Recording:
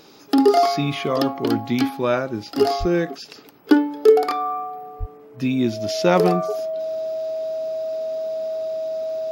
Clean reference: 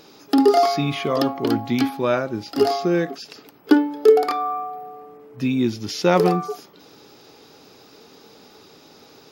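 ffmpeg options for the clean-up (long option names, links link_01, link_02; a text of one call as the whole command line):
ffmpeg -i in.wav -filter_complex "[0:a]bandreject=frequency=640:width=30,asplit=3[link_01][link_02][link_03];[link_01]afade=type=out:start_time=2.79:duration=0.02[link_04];[link_02]highpass=frequency=140:width=0.5412,highpass=frequency=140:width=1.3066,afade=type=in:start_time=2.79:duration=0.02,afade=type=out:start_time=2.91:duration=0.02[link_05];[link_03]afade=type=in:start_time=2.91:duration=0.02[link_06];[link_04][link_05][link_06]amix=inputs=3:normalize=0,asplit=3[link_07][link_08][link_09];[link_07]afade=type=out:start_time=4.99:duration=0.02[link_10];[link_08]highpass=frequency=140:width=0.5412,highpass=frequency=140:width=1.3066,afade=type=in:start_time=4.99:duration=0.02,afade=type=out:start_time=5.11:duration=0.02[link_11];[link_09]afade=type=in:start_time=5.11:duration=0.02[link_12];[link_10][link_11][link_12]amix=inputs=3:normalize=0" out.wav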